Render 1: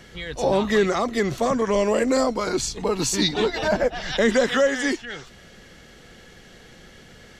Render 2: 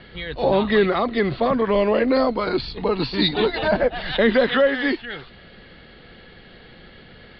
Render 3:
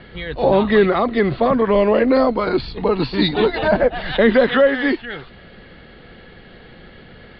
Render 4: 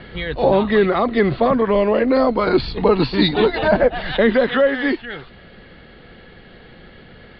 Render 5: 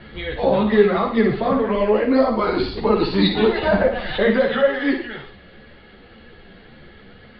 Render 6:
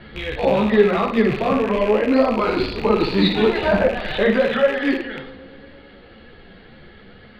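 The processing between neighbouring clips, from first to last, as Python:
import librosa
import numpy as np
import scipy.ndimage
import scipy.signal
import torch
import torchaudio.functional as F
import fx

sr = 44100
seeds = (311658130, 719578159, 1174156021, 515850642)

y1 = scipy.signal.sosfilt(scipy.signal.butter(16, 4600.0, 'lowpass', fs=sr, output='sos'), x)
y1 = F.gain(torch.from_numpy(y1), 2.0).numpy()
y2 = fx.high_shelf(y1, sr, hz=4000.0, db=-10.5)
y2 = F.gain(torch.from_numpy(y2), 4.0).numpy()
y3 = fx.rider(y2, sr, range_db=4, speed_s=0.5)
y4 = fx.room_flutter(y3, sr, wall_m=9.7, rt60_s=0.51)
y4 = fx.ensemble(y4, sr)
y5 = fx.rattle_buzz(y4, sr, strikes_db=-33.0, level_db=-20.0)
y5 = fx.echo_tape(y5, sr, ms=111, feedback_pct=87, wet_db=-17.0, lp_hz=2100.0, drive_db=7.0, wow_cents=30)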